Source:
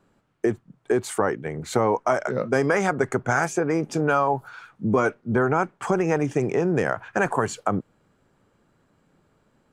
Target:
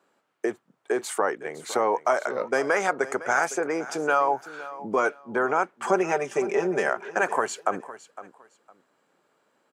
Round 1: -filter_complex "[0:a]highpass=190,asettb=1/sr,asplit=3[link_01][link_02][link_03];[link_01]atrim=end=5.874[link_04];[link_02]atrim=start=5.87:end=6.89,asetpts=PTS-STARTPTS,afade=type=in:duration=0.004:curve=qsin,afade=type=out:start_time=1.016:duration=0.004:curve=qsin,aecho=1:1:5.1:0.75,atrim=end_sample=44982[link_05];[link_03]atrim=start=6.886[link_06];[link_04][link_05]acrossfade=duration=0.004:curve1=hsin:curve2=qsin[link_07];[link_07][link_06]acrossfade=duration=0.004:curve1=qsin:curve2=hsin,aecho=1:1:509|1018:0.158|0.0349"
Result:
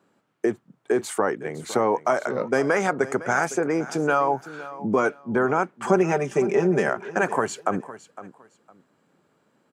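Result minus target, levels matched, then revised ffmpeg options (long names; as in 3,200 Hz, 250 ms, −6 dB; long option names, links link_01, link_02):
250 Hz band +4.5 dB
-filter_complex "[0:a]highpass=440,asettb=1/sr,asplit=3[link_01][link_02][link_03];[link_01]atrim=end=5.874[link_04];[link_02]atrim=start=5.87:end=6.89,asetpts=PTS-STARTPTS,afade=type=in:duration=0.004:curve=qsin,afade=type=out:start_time=1.016:duration=0.004:curve=qsin,aecho=1:1:5.1:0.75,atrim=end_sample=44982[link_05];[link_03]atrim=start=6.886[link_06];[link_04][link_05]acrossfade=duration=0.004:curve1=hsin:curve2=qsin[link_07];[link_07][link_06]acrossfade=duration=0.004:curve1=qsin:curve2=hsin,aecho=1:1:509|1018:0.158|0.0349"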